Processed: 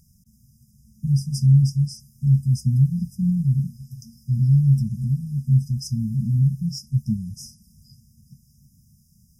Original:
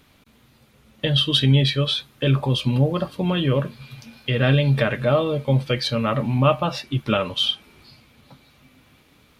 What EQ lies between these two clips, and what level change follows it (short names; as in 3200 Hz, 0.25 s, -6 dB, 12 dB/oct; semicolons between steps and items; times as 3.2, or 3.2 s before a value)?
brick-wall FIR band-stop 230–4900 Hz; +3.0 dB